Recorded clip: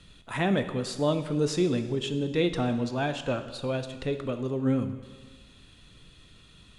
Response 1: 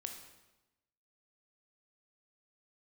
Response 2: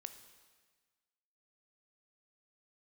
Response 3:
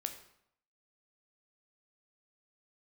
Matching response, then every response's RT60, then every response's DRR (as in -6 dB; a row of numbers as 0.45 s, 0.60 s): 2; 1.0 s, 1.4 s, 0.75 s; 4.0 dB, 8.5 dB, 6.0 dB